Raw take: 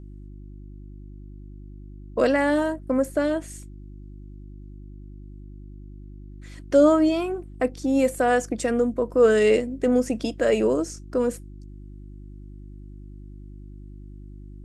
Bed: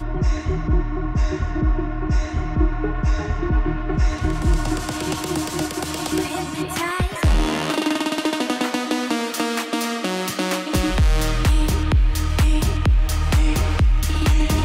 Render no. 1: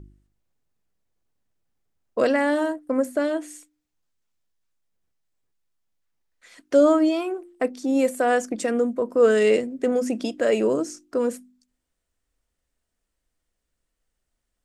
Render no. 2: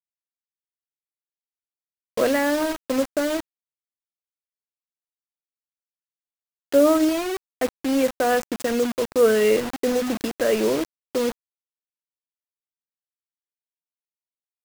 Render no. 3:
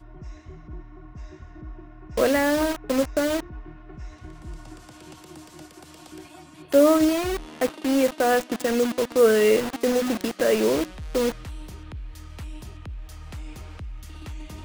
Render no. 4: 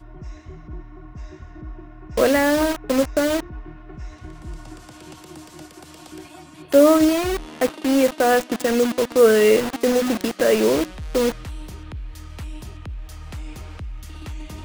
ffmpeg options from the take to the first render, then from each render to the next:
-af "bandreject=f=50:t=h:w=4,bandreject=f=100:t=h:w=4,bandreject=f=150:t=h:w=4,bandreject=f=200:t=h:w=4,bandreject=f=250:t=h:w=4,bandreject=f=300:t=h:w=4,bandreject=f=350:t=h:w=4"
-af "adynamicsmooth=sensitivity=7:basefreq=2.1k,acrusher=bits=4:mix=0:aa=0.000001"
-filter_complex "[1:a]volume=-20dB[a];[0:a][a]amix=inputs=2:normalize=0"
-af "volume=3.5dB"

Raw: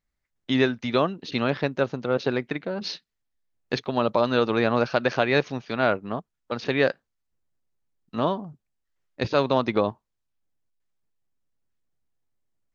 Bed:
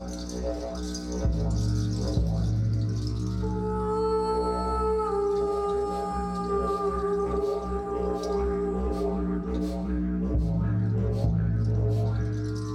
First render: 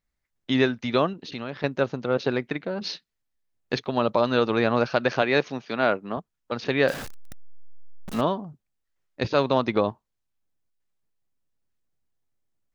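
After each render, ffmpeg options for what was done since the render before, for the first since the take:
-filter_complex "[0:a]asettb=1/sr,asplit=3[a][b][c];[a]atrim=end=1.134[d];[b]atrim=start=1.13:end=1.64,asetpts=PTS-STARTPTS,afade=t=in:d=0.004:c=qsin,afade=t=out:st=0.506:d=0.004:c=qsin,acompressor=threshold=-36dB:ratio=2:attack=3.2:release=140:knee=1:detection=peak[e];[c]atrim=start=1.636[f];[d][e]acrossfade=d=0.004:c1=hsin:c2=qsin[g];[g][f]acrossfade=d=0.004:c1=qsin:c2=hsin,asettb=1/sr,asplit=3[h][i][j];[h]atrim=end=5.224[k];[i]atrim=start=5.22:end=6.17,asetpts=PTS-STARTPTS,afade=t=in:d=0.004:c=qsin,afade=t=out:st=0.946:d=0.004:c=qsin,highpass=160[l];[j]atrim=start=6.166[m];[k][l]acrossfade=d=0.004:c1=hsin:c2=qsin[n];[n][m]acrossfade=d=0.004:c1=qsin:c2=hsin,asettb=1/sr,asplit=3[o][p][q];[o]atrim=end=6.884[r];[p]atrim=start=6.88:end=8.21,asetpts=PTS-STARTPTS,afade=t=in:d=0.004:c=qsin,afade=t=out:st=1.326:d=0.004:c=qsin,aeval=exprs='val(0)+0.5*0.0376*sgn(val(0))':c=same[s];[q]atrim=start=8.206[t];[r][s]acrossfade=d=0.004:c1=hsin:c2=qsin[u];[u][t]acrossfade=d=0.004:c1=qsin:c2=hsin"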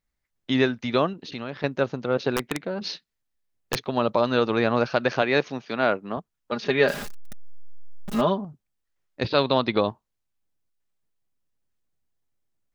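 -filter_complex "[0:a]asettb=1/sr,asplit=3[a][b][c];[a]atrim=end=2.314[d];[b]atrim=start=2.31:end=3.8,asetpts=PTS-STARTPTS,afade=t=in:d=0.004:c=qsin,afade=t=out:st=1.486:d=0.004:c=qsin,aeval=exprs='(mod(5.96*val(0)+1,2)-1)/5.96':c=same[e];[c]atrim=start=3.796[f];[d][e]acrossfade=d=0.004:c1=hsin:c2=qsin[g];[g][f]acrossfade=d=0.004:c1=qsin:c2=hsin,asettb=1/sr,asplit=3[h][i][j];[h]atrim=end=6.524[k];[i]atrim=start=6.52:end=8.45,asetpts=PTS-STARTPTS,afade=t=in:d=0.004:c=qsin,afade=t=out:st=1.926:d=0.004:c=qsin,aecho=1:1:4.9:0.65,atrim=end_sample=85113[l];[j]atrim=start=8.446[m];[k][l]acrossfade=d=0.004:c1=hsin:c2=qsin[n];[n][m]acrossfade=d=0.004:c1=qsin:c2=hsin,asettb=1/sr,asplit=3[o][p][q];[o]atrim=end=9.254[r];[p]atrim=start=9.25:end=9.89,asetpts=PTS-STARTPTS,afade=t=in:d=0.004:c=qsin,afade=t=out:st=0.636:d=0.004:c=qsin,highshelf=f=5.8k:t=q:w=3:g=-12.5[s];[q]atrim=start=9.886[t];[r][s]acrossfade=d=0.004:c1=hsin:c2=qsin[u];[u][t]acrossfade=d=0.004:c1=qsin:c2=hsin"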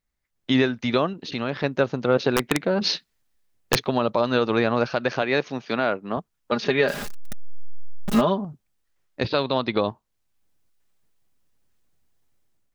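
-af "dynaudnorm=f=190:g=5:m=10dB,alimiter=limit=-9dB:level=0:latency=1:release=424"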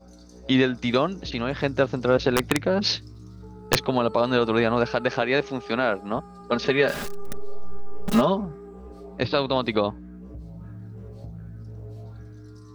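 -filter_complex "[1:a]volume=-14dB[a];[0:a][a]amix=inputs=2:normalize=0"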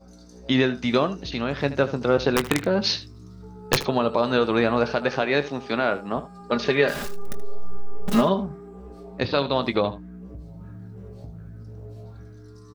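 -filter_complex "[0:a]asplit=2[a][b];[b]adelay=21,volume=-13dB[c];[a][c]amix=inputs=2:normalize=0,aecho=1:1:77:0.168"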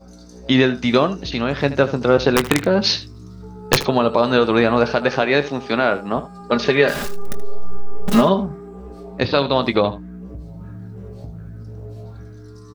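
-af "volume=5.5dB,alimiter=limit=-3dB:level=0:latency=1"

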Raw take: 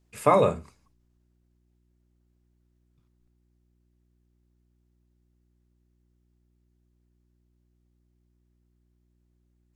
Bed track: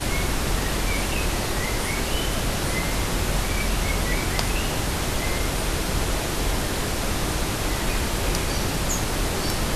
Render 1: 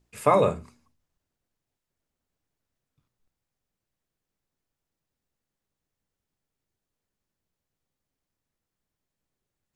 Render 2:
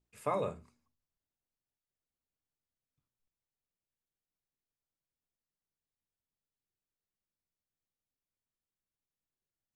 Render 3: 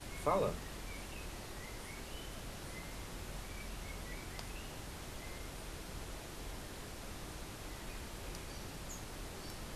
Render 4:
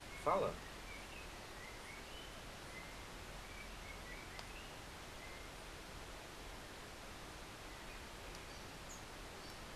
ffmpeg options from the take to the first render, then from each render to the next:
-af "bandreject=f=60:t=h:w=4,bandreject=f=120:t=h:w=4,bandreject=f=180:t=h:w=4,bandreject=f=240:t=h:w=4,bandreject=f=300:t=h:w=4,bandreject=f=360:t=h:w=4"
-af "volume=-13.5dB"
-filter_complex "[1:a]volume=-22dB[a];[0:a][a]amix=inputs=2:normalize=0"
-af "lowpass=f=3.8k:p=1,lowshelf=f=490:g=-8.5"

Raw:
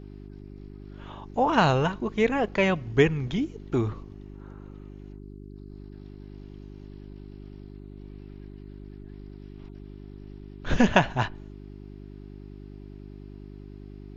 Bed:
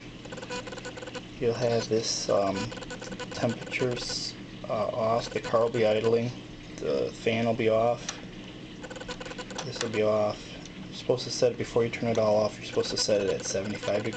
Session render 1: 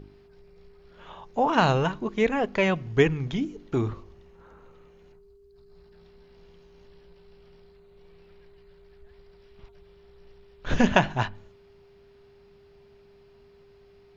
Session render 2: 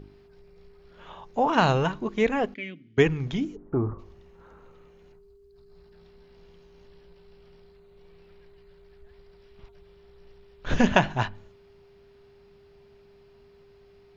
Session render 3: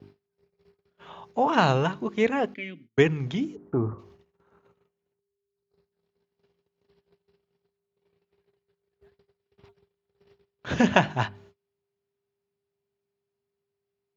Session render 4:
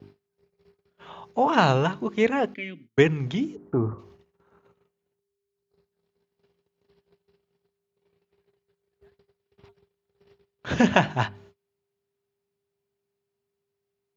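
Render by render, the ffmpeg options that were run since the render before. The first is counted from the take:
-af "bandreject=f=50:t=h:w=4,bandreject=f=100:t=h:w=4,bandreject=f=150:t=h:w=4,bandreject=f=200:t=h:w=4,bandreject=f=250:t=h:w=4,bandreject=f=300:t=h:w=4,bandreject=f=350:t=h:w=4"
-filter_complex "[0:a]asettb=1/sr,asplit=3[a][b][c];[a]atrim=end=2.544[d];[b]atrim=start=2.54:end=2.98,asetpts=PTS-STARTPTS,afade=t=in:d=0.004:c=qsin,afade=t=out:st=0.436:d=0.004:c=qsin,asplit=3[e][f][g];[e]bandpass=f=270:t=q:w=8,volume=0dB[h];[f]bandpass=f=2.29k:t=q:w=8,volume=-6dB[i];[g]bandpass=f=3.01k:t=q:w=8,volume=-9dB[j];[h][i][j]amix=inputs=3:normalize=0[k];[c]atrim=start=2.976[l];[d][k]acrossfade=d=0.004:c1=hsin:c2=qsin[m];[m][l]acrossfade=d=0.004:c1=qsin:c2=hsin,asplit=3[n][o][p];[n]afade=t=out:st=3.55:d=0.02[q];[o]lowpass=f=1.3k:w=0.5412,lowpass=f=1.3k:w=1.3066,afade=t=in:st=3.55:d=0.02,afade=t=out:st=3.98:d=0.02[r];[p]afade=t=in:st=3.98:d=0.02[s];[q][r][s]amix=inputs=3:normalize=0"
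-af "agate=range=-28dB:threshold=-49dB:ratio=16:detection=peak,highpass=f=87:w=0.5412,highpass=f=87:w=1.3066"
-af "volume=1.5dB,alimiter=limit=-2dB:level=0:latency=1"

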